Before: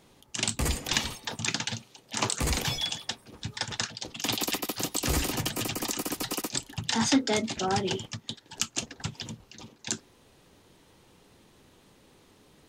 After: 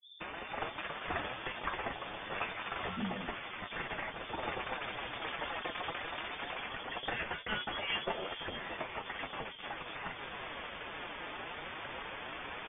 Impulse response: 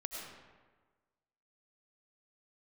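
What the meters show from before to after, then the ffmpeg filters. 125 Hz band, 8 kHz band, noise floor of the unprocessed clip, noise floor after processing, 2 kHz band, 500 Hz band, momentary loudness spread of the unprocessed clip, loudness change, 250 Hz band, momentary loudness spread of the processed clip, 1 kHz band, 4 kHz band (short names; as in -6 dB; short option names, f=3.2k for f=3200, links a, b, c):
-14.5 dB, under -40 dB, -60 dBFS, -47 dBFS, -1.5 dB, -6.0 dB, 11 LU, -9.5 dB, -13.5 dB, 6 LU, -2.5 dB, -10.0 dB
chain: -filter_complex "[0:a]aeval=exprs='val(0)+0.5*0.0596*sgn(val(0))':c=same,aemphasis=mode=production:type=riaa,afftfilt=real='re*gte(hypot(re,im),0.0178)':imag='im*gte(hypot(re,im),0.0178)':win_size=1024:overlap=0.75,agate=range=-36dB:threshold=-18dB:ratio=16:detection=peak,tiltshelf=f=1.1k:g=-5,asoftclip=type=tanh:threshold=-5dB,flanger=delay=5.4:depth=5.7:regen=34:speed=0.18:shape=triangular,acrossover=split=150|510[a][b][c];[c]adelay=190[d];[b]adelay=590[e];[a][e][d]amix=inputs=3:normalize=0,acompressor=threshold=-21dB:ratio=20,lowpass=f=3.1k:t=q:w=0.5098,lowpass=f=3.1k:t=q:w=0.6013,lowpass=f=3.1k:t=q:w=0.9,lowpass=f=3.1k:t=q:w=2.563,afreqshift=-3600,volume=2dB"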